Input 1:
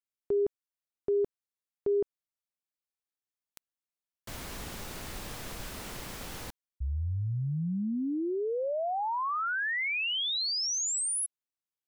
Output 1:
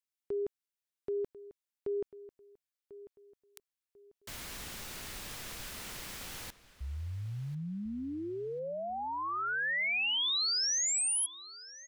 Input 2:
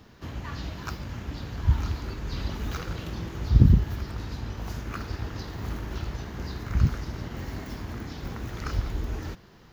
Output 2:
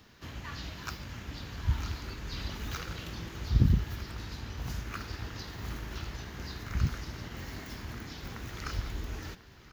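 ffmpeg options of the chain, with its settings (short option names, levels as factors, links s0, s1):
-filter_complex "[0:a]asplit=2[s0][s1];[s1]adelay=1044,lowpass=f=5000:p=1,volume=0.158,asplit=2[s2][s3];[s3]adelay=1044,lowpass=f=5000:p=1,volume=0.32,asplit=2[s4][s5];[s5]adelay=1044,lowpass=f=5000:p=1,volume=0.32[s6];[s0][s2][s4][s6]amix=inputs=4:normalize=0,acrossover=split=1400[s7][s8];[s8]acontrast=85[s9];[s7][s9]amix=inputs=2:normalize=0,volume=0.447"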